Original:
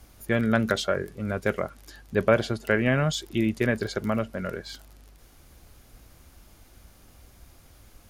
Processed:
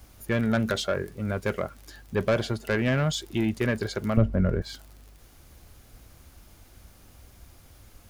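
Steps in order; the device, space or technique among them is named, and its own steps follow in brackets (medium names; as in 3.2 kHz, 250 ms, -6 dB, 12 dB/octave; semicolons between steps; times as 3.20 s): open-reel tape (saturation -17 dBFS, distortion -14 dB; peaking EQ 92 Hz +3 dB 0.93 oct; white noise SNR 37 dB); 4.17–4.62 s: tilt EQ -4 dB/octave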